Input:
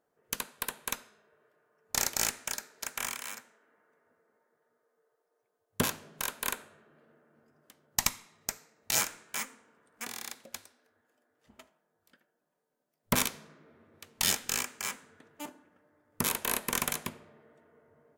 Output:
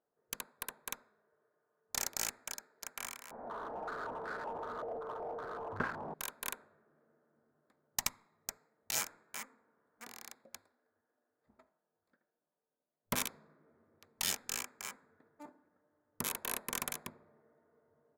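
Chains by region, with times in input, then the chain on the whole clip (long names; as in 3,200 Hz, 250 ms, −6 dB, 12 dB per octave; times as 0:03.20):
0:03.31–0:06.14: linear delta modulator 64 kbit/s, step −30 dBFS + high-frequency loss of the air 240 metres + low-pass on a step sequencer 5.3 Hz 710–1,500 Hz
whole clip: adaptive Wiener filter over 15 samples; low-shelf EQ 360 Hz −4 dB; level −6.5 dB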